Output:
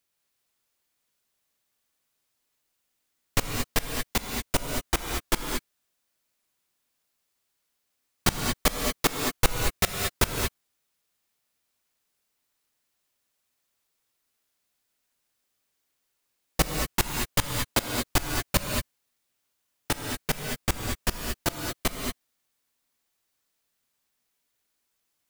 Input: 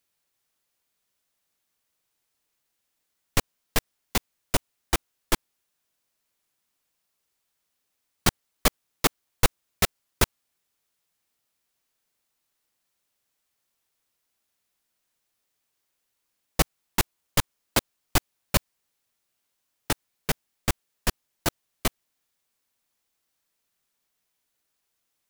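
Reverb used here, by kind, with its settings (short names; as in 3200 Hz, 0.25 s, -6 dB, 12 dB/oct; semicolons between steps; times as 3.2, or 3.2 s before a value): non-linear reverb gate 0.25 s rising, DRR 2 dB; gain -1.5 dB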